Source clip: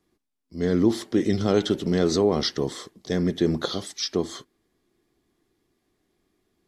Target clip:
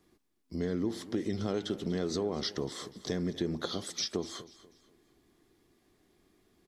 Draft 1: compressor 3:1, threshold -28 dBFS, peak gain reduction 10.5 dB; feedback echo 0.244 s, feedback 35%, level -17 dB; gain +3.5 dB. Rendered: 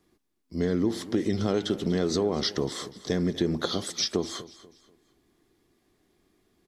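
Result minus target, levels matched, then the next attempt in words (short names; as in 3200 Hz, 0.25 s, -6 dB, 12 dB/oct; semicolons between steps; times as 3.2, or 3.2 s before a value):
compressor: peak gain reduction -6.5 dB
compressor 3:1, threshold -38 dBFS, peak gain reduction 17.5 dB; feedback echo 0.244 s, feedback 35%, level -17 dB; gain +3.5 dB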